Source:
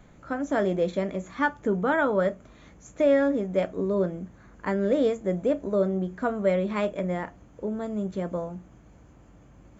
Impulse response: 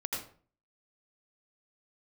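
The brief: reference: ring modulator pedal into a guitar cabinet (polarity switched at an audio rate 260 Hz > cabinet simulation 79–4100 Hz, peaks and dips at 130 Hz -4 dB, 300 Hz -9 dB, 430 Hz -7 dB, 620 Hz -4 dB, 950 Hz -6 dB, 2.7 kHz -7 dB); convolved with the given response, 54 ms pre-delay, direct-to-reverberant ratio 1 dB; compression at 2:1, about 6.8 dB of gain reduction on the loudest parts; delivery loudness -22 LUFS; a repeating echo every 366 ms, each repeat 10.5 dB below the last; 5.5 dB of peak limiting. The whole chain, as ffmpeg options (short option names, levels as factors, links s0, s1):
-filter_complex "[0:a]acompressor=threshold=0.0316:ratio=2,alimiter=limit=0.0668:level=0:latency=1,aecho=1:1:366|732|1098:0.299|0.0896|0.0269,asplit=2[s0][s1];[1:a]atrim=start_sample=2205,adelay=54[s2];[s1][s2]afir=irnorm=-1:irlink=0,volume=0.596[s3];[s0][s3]amix=inputs=2:normalize=0,aeval=exprs='val(0)*sgn(sin(2*PI*260*n/s))':c=same,highpass=79,equalizer=f=130:t=q:w=4:g=-4,equalizer=f=300:t=q:w=4:g=-9,equalizer=f=430:t=q:w=4:g=-7,equalizer=f=620:t=q:w=4:g=-4,equalizer=f=950:t=q:w=4:g=-6,equalizer=f=2700:t=q:w=4:g=-7,lowpass=f=4100:w=0.5412,lowpass=f=4100:w=1.3066,volume=4.22"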